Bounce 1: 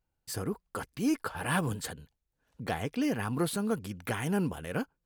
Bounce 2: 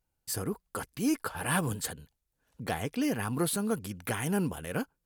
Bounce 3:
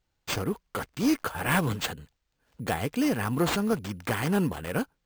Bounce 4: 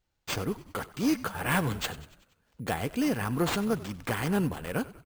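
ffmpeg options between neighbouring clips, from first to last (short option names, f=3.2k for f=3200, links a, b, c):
-af "equalizer=f=12k:w=0.55:g=7"
-af "acrusher=samples=4:mix=1:aa=0.000001,volume=4dB"
-filter_complex "[0:a]asplit=6[a][b][c][d][e][f];[b]adelay=95,afreqshift=-59,volume=-18dB[g];[c]adelay=190,afreqshift=-118,volume=-22.9dB[h];[d]adelay=285,afreqshift=-177,volume=-27.8dB[i];[e]adelay=380,afreqshift=-236,volume=-32.6dB[j];[f]adelay=475,afreqshift=-295,volume=-37.5dB[k];[a][g][h][i][j][k]amix=inputs=6:normalize=0,volume=-2dB"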